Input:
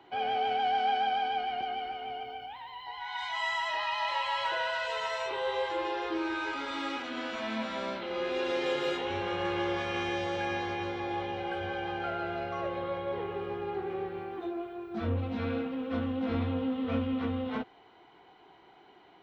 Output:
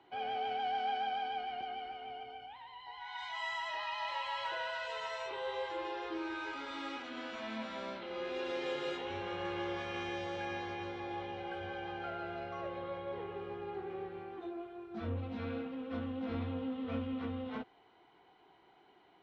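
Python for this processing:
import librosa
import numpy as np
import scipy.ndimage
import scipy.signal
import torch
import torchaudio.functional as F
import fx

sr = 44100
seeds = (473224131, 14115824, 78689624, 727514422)

y = scipy.signal.sosfilt(scipy.signal.butter(2, 9200.0, 'lowpass', fs=sr, output='sos'), x)
y = y * librosa.db_to_amplitude(-7.0)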